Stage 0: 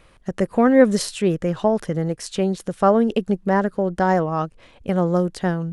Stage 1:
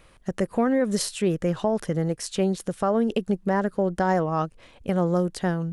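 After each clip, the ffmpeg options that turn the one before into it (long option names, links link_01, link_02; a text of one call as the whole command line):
ffmpeg -i in.wav -af "highshelf=frequency=8100:gain=6,alimiter=limit=-11.5dB:level=0:latency=1:release=162,volume=-2dB" out.wav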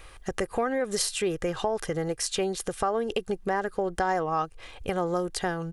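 ffmpeg -i in.wav -af "equalizer=frequency=220:width_type=o:width=2:gain=-9.5,aecho=1:1:2.5:0.36,acompressor=threshold=-36dB:ratio=2,volume=7dB" out.wav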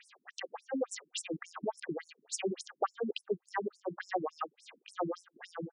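ffmpeg -i in.wav -af "afftfilt=real='re*between(b*sr/1024,230*pow(7500/230,0.5+0.5*sin(2*PI*3.5*pts/sr))/1.41,230*pow(7500/230,0.5+0.5*sin(2*PI*3.5*pts/sr))*1.41)':imag='im*between(b*sr/1024,230*pow(7500/230,0.5+0.5*sin(2*PI*3.5*pts/sr))/1.41,230*pow(7500/230,0.5+0.5*sin(2*PI*3.5*pts/sr))*1.41)':win_size=1024:overlap=0.75" out.wav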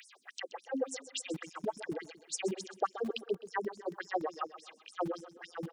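ffmpeg -i in.wav -filter_complex "[0:a]acrossover=split=150|1200|3200[link_01][link_02][link_03][link_04];[link_01]acrusher=bits=7:mix=0:aa=0.000001[link_05];[link_04]acompressor=mode=upward:threshold=-54dB:ratio=2.5[link_06];[link_05][link_02][link_03][link_06]amix=inputs=4:normalize=0,aecho=1:1:128|256|384|512:0.2|0.0818|0.0335|0.0138" out.wav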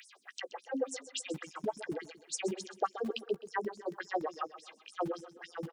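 ffmpeg -i in.wav -filter_complex "[0:a]asplit=2[link_01][link_02];[link_02]adelay=14,volume=-13.5dB[link_03];[link_01][link_03]amix=inputs=2:normalize=0" out.wav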